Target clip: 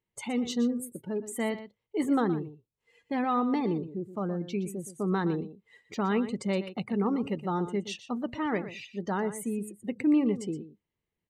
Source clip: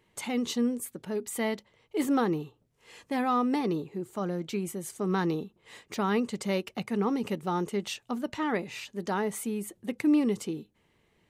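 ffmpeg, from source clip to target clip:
ffmpeg -i in.wav -af "afftdn=noise_reduction=20:noise_floor=-43,lowshelf=frequency=160:gain=6,aecho=1:1:120:0.224,volume=-1.5dB" out.wav

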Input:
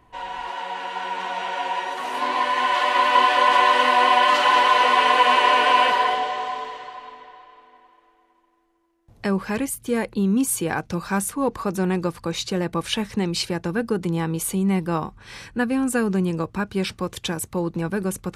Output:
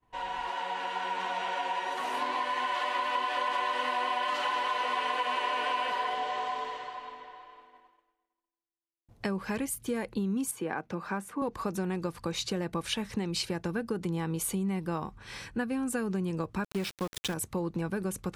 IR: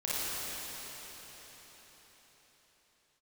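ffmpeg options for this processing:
-filter_complex "[0:a]agate=range=-33dB:threshold=-48dB:ratio=3:detection=peak,asettb=1/sr,asplit=3[link_01][link_02][link_03];[link_01]atrim=end=16.644[link_04];[link_02]atrim=start=16.64:end=17.34,asetpts=PTS-STARTPTS,afade=type=in:duration=0.004:curve=qsin,afade=type=out:start_time=0.696:duration=0.004:curve=qsin,aeval=exprs='val(0)*gte(abs(val(0)),0.0282)':channel_layout=same[link_05];[link_03]atrim=start=17.336[link_06];[link_04][link_05]acrossfade=duration=0.004:curve1=hsin:curve2=qsin[link_07];[link_07][link_06]acrossfade=duration=0.004:curve1=qsin:curve2=hsin,acompressor=threshold=-25dB:ratio=5,asettb=1/sr,asplit=3[link_08][link_09][link_10];[link_08]atrim=end=10.514[link_11];[link_09]atrim=start=10.51:end=11.42,asetpts=PTS-STARTPTS,afade=type=in:duration=0.004:curve=qsin,afade=type=out:start_time=0.906:duration=0.004:curve=qsin,acrossover=split=170 2600:gain=0.158 1 0.224[link_12][link_13][link_14];[link_12][link_13][link_14]amix=inputs=3:normalize=0[link_15];[link_10]atrim=start=11.416[link_16];[link_11][link_15]acrossfade=duration=0.004:curve1=hsin:curve2=qsin[link_17];[link_17][link_16]acrossfade=duration=0.004:curve1=qsin:curve2=hsin,volume=-3.5dB"

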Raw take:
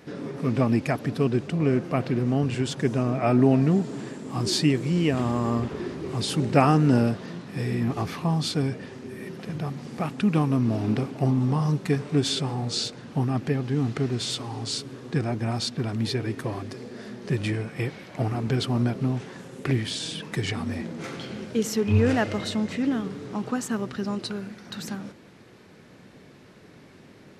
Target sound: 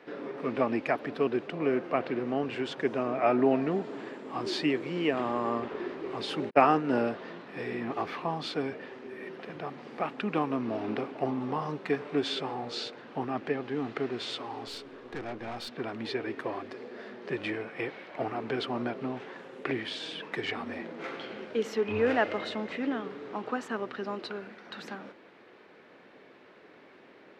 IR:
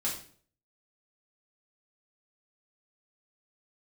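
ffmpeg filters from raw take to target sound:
-filter_complex "[0:a]asplit=3[link_01][link_02][link_03];[link_01]afade=type=out:start_time=6.49:duration=0.02[link_04];[link_02]agate=range=-47dB:threshold=-18dB:ratio=16:detection=peak,afade=type=in:start_time=6.49:duration=0.02,afade=type=out:start_time=6.95:duration=0.02[link_05];[link_03]afade=type=in:start_time=6.95:duration=0.02[link_06];[link_04][link_05][link_06]amix=inputs=3:normalize=0,acrossover=split=300 3600:gain=0.0794 1 0.0794[link_07][link_08][link_09];[link_07][link_08][link_09]amix=inputs=3:normalize=0,asettb=1/sr,asplit=3[link_10][link_11][link_12];[link_10]atrim=end=14.674[link_13];[link_11]atrim=start=14.67:end=15.69,asetpts=PTS-STARTPTS,afade=type=in:duration=0.004:curve=qsin,afade=type=out:start_time=1.016:duration=0.004:curve=qsin,aeval=exprs='(tanh(44.7*val(0)+0.45)-tanh(0.45))/44.7':channel_layout=same[link_14];[link_12]atrim=start=15.686[link_15];[link_13][link_14]acrossfade=duration=0.004:curve1=hsin:curve2=qsin[link_16];[link_16][link_15]acrossfade=duration=0.004:curve1=qsin:curve2=hsin"

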